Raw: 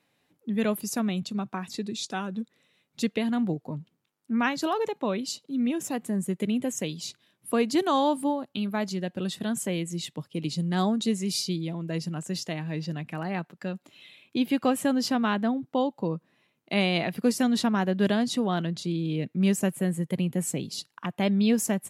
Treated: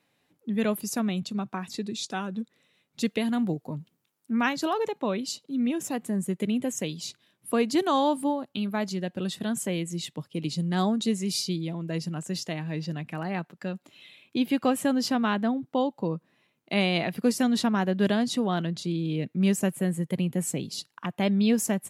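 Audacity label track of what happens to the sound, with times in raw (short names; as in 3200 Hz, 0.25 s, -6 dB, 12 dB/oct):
3.050000	4.530000	high shelf 6900 Hz +9 dB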